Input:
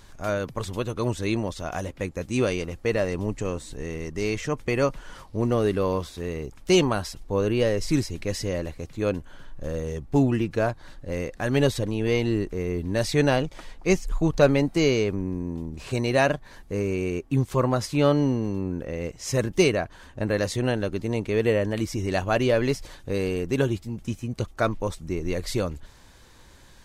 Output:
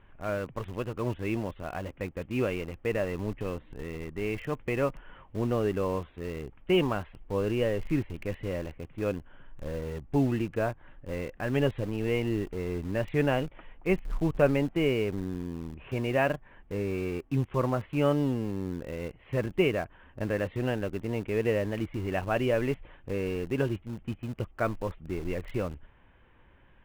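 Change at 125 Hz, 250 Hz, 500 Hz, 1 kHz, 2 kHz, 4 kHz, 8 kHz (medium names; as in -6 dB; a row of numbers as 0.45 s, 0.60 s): -5.0 dB, -5.0 dB, -5.0 dB, -5.0 dB, -5.0 dB, -9.0 dB, under -15 dB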